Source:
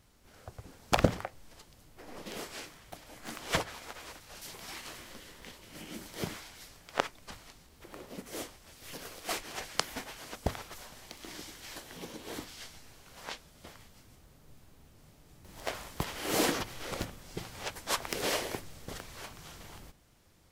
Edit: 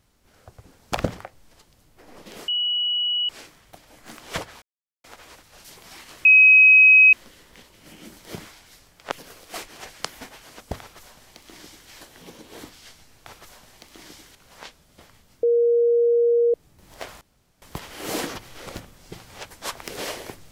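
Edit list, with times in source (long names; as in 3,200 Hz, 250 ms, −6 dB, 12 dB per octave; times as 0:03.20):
0:02.48: insert tone 2,930 Hz −20.5 dBFS 0.81 s
0:03.81: splice in silence 0.42 s
0:05.02: insert tone 2,540 Hz −8.5 dBFS 0.88 s
0:07.01–0:08.87: remove
0:10.55–0:11.64: duplicate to 0:13.01
0:14.09–0:15.20: beep over 472 Hz −15 dBFS
0:15.87: splice in room tone 0.41 s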